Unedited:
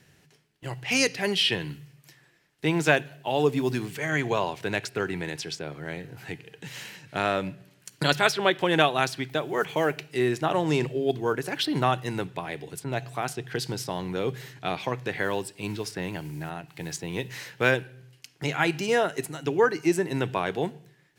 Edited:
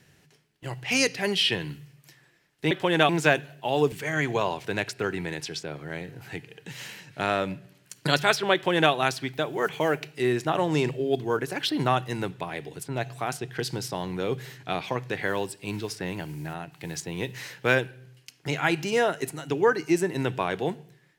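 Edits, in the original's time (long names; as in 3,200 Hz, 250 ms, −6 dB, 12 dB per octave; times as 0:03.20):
0:03.54–0:03.88: remove
0:08.50–0:08.88: duplicate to 0:02.71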